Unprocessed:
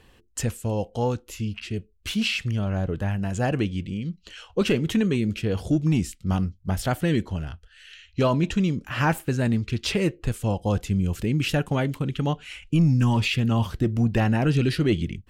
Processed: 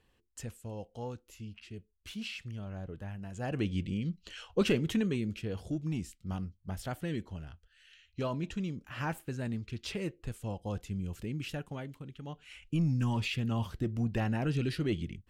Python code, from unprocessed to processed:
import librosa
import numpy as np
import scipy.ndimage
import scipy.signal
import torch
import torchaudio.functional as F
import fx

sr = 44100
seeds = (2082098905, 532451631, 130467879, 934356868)

y = fx.gain(x, sr, db=fx.line((3.34, -15.5), (3.74, -4.0), (4.47, -4.0), (5.69, -13.0), (11.27, -13.0), (12.22, -20.0), (12.59, -10.0)))